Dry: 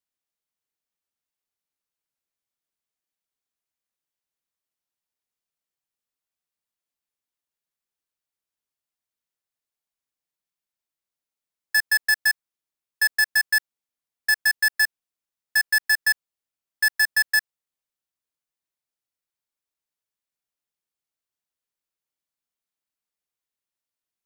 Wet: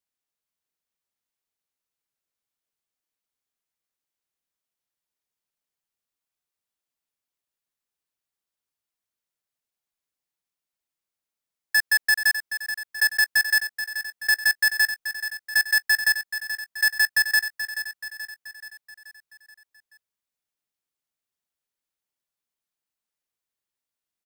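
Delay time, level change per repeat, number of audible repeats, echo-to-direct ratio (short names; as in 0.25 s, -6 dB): 0.43 s, -5.5 dB, 5, -8.5 dB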